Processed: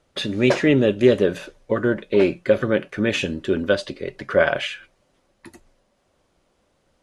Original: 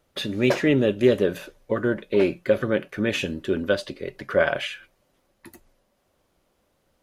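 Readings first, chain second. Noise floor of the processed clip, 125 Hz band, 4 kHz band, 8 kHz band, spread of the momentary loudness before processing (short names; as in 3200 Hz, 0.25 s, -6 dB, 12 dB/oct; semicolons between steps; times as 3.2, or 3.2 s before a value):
-67 dBFS, +3.0 dB, +3.0 dB, +2.5 dB, 11 LU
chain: LPF 9700 Hz 24 dB/oct; gain +3 dB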